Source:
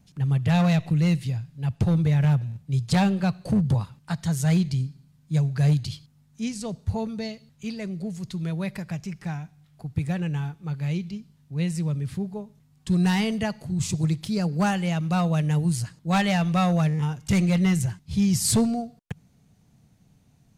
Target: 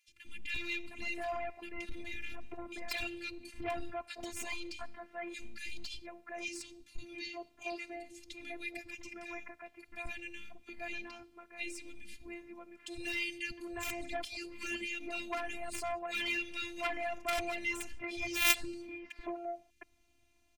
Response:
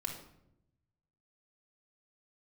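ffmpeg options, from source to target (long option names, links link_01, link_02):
-filter_complex "[0:a]acrossover=split=260|1800[link_01][link_02][link_03];[link_01]adelay=80[link_04];[link_02]adelay=710[link_05];[link_04][link_05][link_03]amix=inputs=3:normalize=0,afftfilt=real='hypot(re,im)*cos(PI*b)':imag='0':win_size=512:overlap=0.75,equalizer=frequency=360:width=1.5:gain=-2.5,aeval=exprs='0.398*(cos(1*acos(clip(val(0)/0.398,-1,1)))-cos(1*PI/2))+0.0708*(cos(2*acos(clip(val(0)/0.398,-1,1)))-cos(2*PI/2))+0.178*(cos(3*acos(clip(val(0)/0.398,-1,1)))-cos(3*PI/2))+0.00794*(cos(6*acos(clip(val(0)/0.398,-1,1)))-cos(6*PI/2))+0.0178*(cos(7*acos(clip(val(0)/0.398,-1,1)))-cos(7*PI/2))':channel_layout=same,equalizer=frequency=2400:width=2.1:gain=13"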